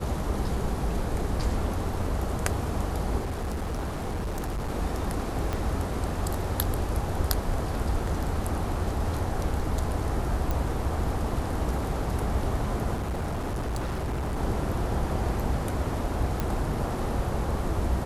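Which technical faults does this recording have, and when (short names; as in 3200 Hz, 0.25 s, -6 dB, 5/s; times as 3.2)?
3.19–4.7 clipped -27 dBFS
5.53 pop
10.51 pop
12.96–14.38 clipped -26.5 dBFS
16.4 pop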